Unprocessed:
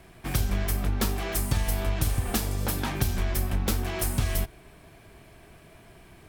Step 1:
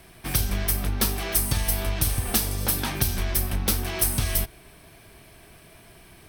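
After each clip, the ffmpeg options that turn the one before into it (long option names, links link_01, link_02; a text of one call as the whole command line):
ffmpeg -i in.wav -af "highshelf=frequency=3200:gain=9.5,bandreject=frequency=7100:width=5.3" out.wav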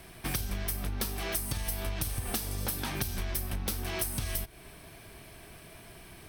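ffmpeg -i in.wav -af "acompressor=threshold=-30dB:ratio=6" out.wav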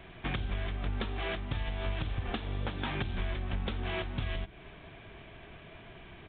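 ffmpeg -i in.wav -af "bandreject=frequency=65.14:width_type=h:width=4,bandreject=frequency=130.28:width_type=h:width=4,bandreject=frequency=195.42:width_type=h:width=4,bandreject=frequency=260.56:width_type=h:width=4,bandreject=frequency=325.7:width_type=h:width=4,aresample=8000,aresample=44100,volume=1dB" out.wav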